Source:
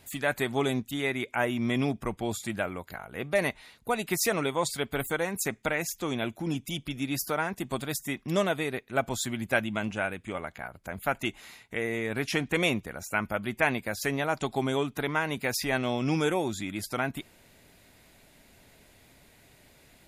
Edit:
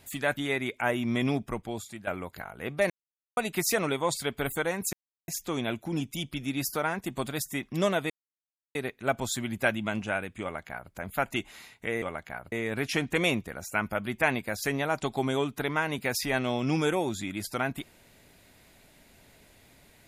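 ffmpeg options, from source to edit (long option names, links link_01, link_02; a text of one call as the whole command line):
ffmpeg -i in.wav -filter_complex "[0:a]asplit=10[link_01][link_02][link_03][link_04][link_05][link_06][link_07][link_08][link_09][link_10];[link_01]atrim=end=0.372[link_11];[link_02]atrim=start=0.908:end=2.61,asetpts=PTS-STARTPTS,afade=type=out:start_time=1.032:duration=0.67:silence=0.237137[link_12];[link_03]atrim=start=2.61:end=3.44,asetpts=PTS-STARTPTS,afade=type=in:duration=0.004:curve=hsin:silence=0.237137,afade=type=out:start_time=0.826:duration=0.004:curve=hsin[link_13];[link_04]atrim=start=3.44:end=3.91,asetpts=PTS-STARTPTS,volume=0[link_14];[link_05]atrim=start=3.91:end=5.47,asetpts=PTS-STARTPTS,afade=type=in:duration=0.004:curve=hsin,afade=type=out:start_time=1.556:duration=0.004:curve=hsin[link_15];[link_06]atrim=start=5.47:end=5.82,asetpts=PTS-STARTPTS,volume=0[link_16];[link_07]atrim=start=5.82:end=8.64,asetpts=PTS-STARTPTS,afade=type=in:duration=0.004:curve=hsin,afade=type=out:start_time=2.816:duration=0.004:curve=hsin,apad=pad_dur=0.65[link_17];[link_08]atrim=start=8.64:end=11.912,asetpts=PTS-STARTPTS,afade=type=in:duration=0.004:curve=hsin[link_18];[link_09]atrim=start=10.308:end=10.812[link_19];[link_10]atrim=start=11.908[link_20];[link_12][link_13][link_14][link_15][link_16][link_17][link_18]concat=n=7:v=0:a=1[link_21];[link_11][link_21]acrossfade=duration=0.004:curve1=hsin:curve2=hsin[link_22];[link_22][link_19]acrossfade=duration=0.004:curve1=hsin:curve2=hsin[link_23];[link_23][link_20]acrossfade=duration=0.004:curve1=hsin:curve2=hsin" out.wav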